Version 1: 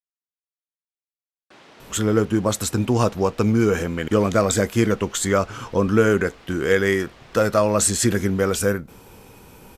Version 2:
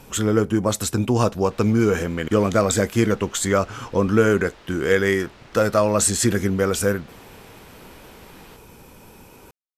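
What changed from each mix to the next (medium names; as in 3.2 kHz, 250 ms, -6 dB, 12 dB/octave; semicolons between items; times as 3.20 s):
speech: entry -1.80 s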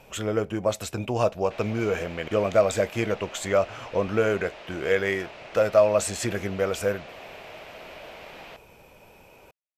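speech -9.0 dB; master: add fifteen-band graphic EQ 250 Hz -4 dB, 630 Hz +12 dB, 2.5 kHz +9 dB, 10 kHz -5 dB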